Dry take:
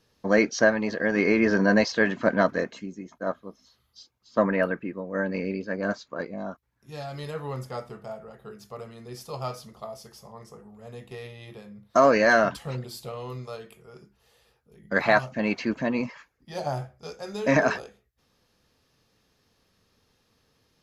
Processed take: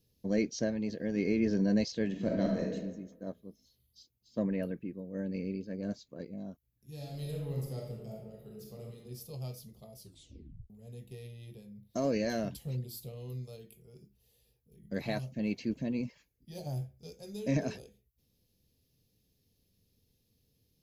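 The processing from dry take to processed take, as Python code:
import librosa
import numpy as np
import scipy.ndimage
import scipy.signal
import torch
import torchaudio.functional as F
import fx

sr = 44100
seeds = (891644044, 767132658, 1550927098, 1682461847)

y = fx.reverb_throw(x, sr, start_s=2.08, length_s=0.66, rt60_s=1.1, drr_db=-0.5)
y = fx.reverb_throw(y, sr, start_s=6.94, length_s=2.03, rt60_s=1.0, drr_db=-1.5)
y = fx.edit(y, sr, fx.tape_stop(start_s=9.97, length_s=0.73), tone=tone)
y = fx.curve_eq(y, sr, hz=(120.0, 480.0, 1300.0, 2300.0, 3900.0, 5900.0, 9000.0, 13000.0), db=(0, -9, -28, -13, -8, -7, -5, 7))
y = y * librosa.db_to_amplitude(-1.5)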